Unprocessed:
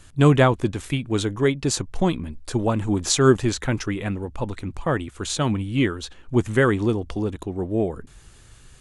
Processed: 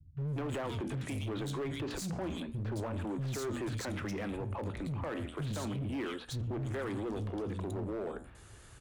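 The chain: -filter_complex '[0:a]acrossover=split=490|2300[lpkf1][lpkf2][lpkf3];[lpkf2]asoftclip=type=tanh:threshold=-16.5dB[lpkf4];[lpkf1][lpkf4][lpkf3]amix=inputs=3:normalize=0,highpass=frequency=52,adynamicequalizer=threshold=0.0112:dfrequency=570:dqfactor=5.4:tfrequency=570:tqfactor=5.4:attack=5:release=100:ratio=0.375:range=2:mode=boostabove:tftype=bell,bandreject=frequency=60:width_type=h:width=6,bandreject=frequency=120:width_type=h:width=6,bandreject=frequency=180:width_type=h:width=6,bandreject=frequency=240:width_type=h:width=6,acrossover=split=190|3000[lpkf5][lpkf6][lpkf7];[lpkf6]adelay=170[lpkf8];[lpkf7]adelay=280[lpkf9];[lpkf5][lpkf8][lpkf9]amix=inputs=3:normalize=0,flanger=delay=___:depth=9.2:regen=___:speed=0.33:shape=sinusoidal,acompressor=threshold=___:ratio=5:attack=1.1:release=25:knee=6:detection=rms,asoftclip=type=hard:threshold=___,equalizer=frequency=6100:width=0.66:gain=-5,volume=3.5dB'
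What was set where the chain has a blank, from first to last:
7.7, -82, -35dB, -36.5dB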